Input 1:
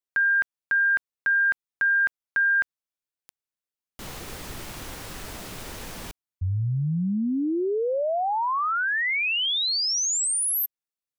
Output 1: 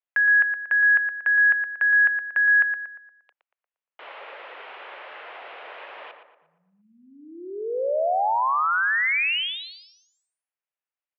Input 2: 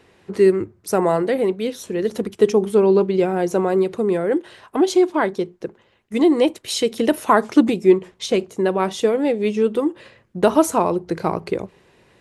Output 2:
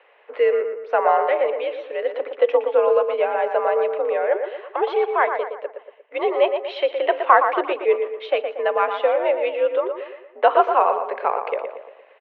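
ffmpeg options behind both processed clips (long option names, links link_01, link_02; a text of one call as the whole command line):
ffmpeg -i in.wav -filter_complex "[0:a]highpass=frequency=450:width_type=q:width=0.5412,highpass=frequency=450:width_type=q:width=1.307,lowpass=frequency=2900:width_type=q:width=0.5176,lowpass=frequency=2900:width_type=q:width=0.7071,lowpass=frequency=2900:width_type=q:width=1.932,afreqshift=67,asplit=2[link_01][link_02];[link_02]adelay=117,lowpass=frequency=2300:poles=1,volume=-6.5dB,asplit=2[link_03][link_04];[link_04]adelay=117,lowpass=frequency=2300:poles=1,volume=0.48,asplit=2[link_05][link_06];[link_06]adelay=117,lowpass=frequency=2300:poles=1,volume=0.48,asplit=2[link_07][link_08];[link_08]adelay=117,lowpass=frequency=2300:poles=1,volume=0.48,asplit=2[link_09][link_10];[link_10]adelay=117,lowpass=frequency=2300:poles=1,volume=0.48,asplit=2[link_11][link_12];[link_12]adelay=117,lowpass=frequency=2300:poles=1,volume=0.48[link_13];[link_01][link_03][link_05][link_07][link_09][link_11][link_13]amix=inputs=7:normalize=0,volume=2dB" out.wav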